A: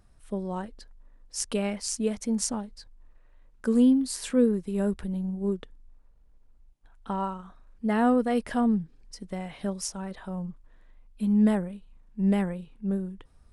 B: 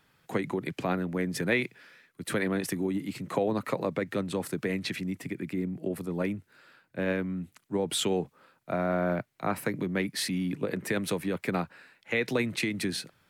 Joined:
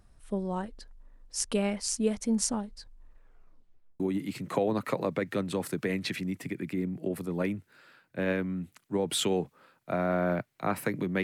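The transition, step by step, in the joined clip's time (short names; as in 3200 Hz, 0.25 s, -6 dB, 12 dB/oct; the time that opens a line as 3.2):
A
3.17 tape stop 0.83 s
4 switch to B from 2.8 s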